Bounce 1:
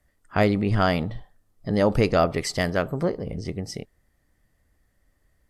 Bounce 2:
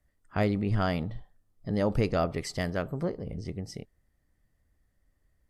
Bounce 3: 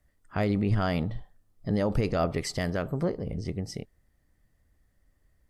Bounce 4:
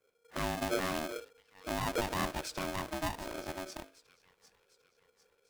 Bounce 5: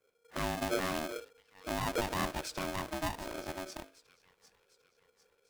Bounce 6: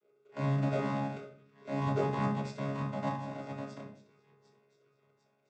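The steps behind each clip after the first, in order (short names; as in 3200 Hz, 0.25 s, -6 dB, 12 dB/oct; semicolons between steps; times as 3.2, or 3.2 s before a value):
low shelf 260 Hz +5 dB; gain -8.5 dB
limiter -19.5 dBFS, peak gain reduction 7 dB; gain +3.5 dB
notches 50/100/150/200 Hz; thin delay 0.75 s, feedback 47%, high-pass 1500 Hz, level -14 dB; polarity switched at an audio rate 470 Hz; gain -7.5 dB
nothing audible
chord vocoder bare fifth, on C#3; shoebox room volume 59 m³, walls mixed, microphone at 0.59 m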